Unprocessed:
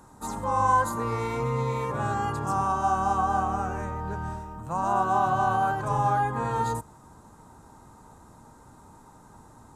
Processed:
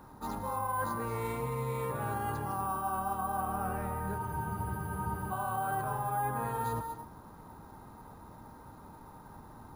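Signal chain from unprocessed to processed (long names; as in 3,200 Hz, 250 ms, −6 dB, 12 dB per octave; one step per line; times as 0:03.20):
reversed playback
downward compressor 6 to 1, threshold −32 dBFS, peak gain reduction 14 dB
reversed playback
reverb whose tail is shaped and stops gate 260 ms rising, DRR 7.5 dB
bad sample-rate conversion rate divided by 4×, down filtered, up hold
frozen spectrum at 0:04.21, 1.10 s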